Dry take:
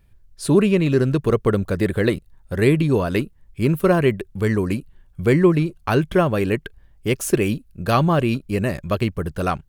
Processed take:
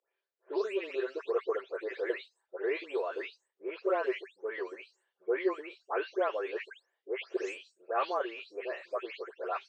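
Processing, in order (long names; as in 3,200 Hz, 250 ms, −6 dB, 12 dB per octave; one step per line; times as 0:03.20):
every frequency bin delayed by itself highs late, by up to 274 ms
Chebyshev band-pass filter 390–8,400 Hz, order 5
high-frequency loss of the air 190 metres
level −8.5 dB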